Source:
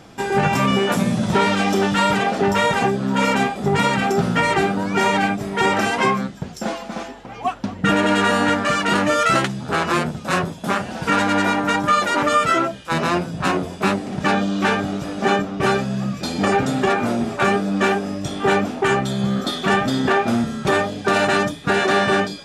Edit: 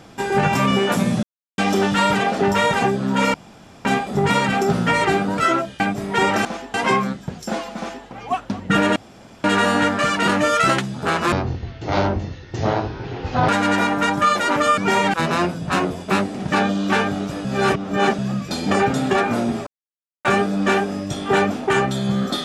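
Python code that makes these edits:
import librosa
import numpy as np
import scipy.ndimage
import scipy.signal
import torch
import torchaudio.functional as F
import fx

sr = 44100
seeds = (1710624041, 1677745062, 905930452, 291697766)

y = fx.edit(x, sr, fx.silence(start_s=1.23, length_s=0.35),
    fx.insert_room_tone(at_s=3.34, length_s=0.51),
    fx.swap(start_s=4.87, length_s=0.36, other_s=12.44, other_length_s=0.42),
    fx.duplicate(start_s=6.91, length_s=0.29, to_s=5.88),
    fx.insert_room_tone(at_s=8.1, length_s=0.48),
    fx.speed_span(start_s=9.98, length_s=1.17, speed=0.54),
    fx.reverse_span(start_s=15.17, length_s=0.74),
    fx.insert_silence(at_s=17.39, length_s=0.58), tone=tone)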